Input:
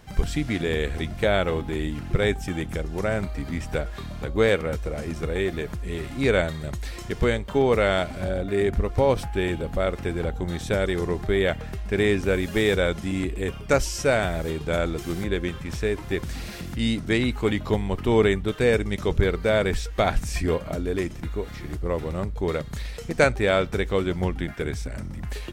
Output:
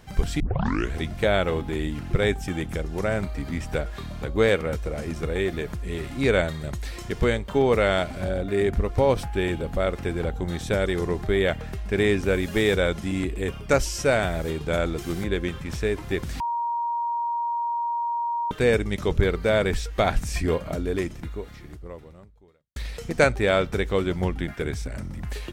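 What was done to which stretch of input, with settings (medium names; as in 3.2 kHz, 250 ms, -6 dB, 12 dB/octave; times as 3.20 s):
0.40 s: tape start 0.54 s
16.40–18.51 s: bleep 942 Hz -23.5 dBFS
20.98–22.76 s: fade out quadratic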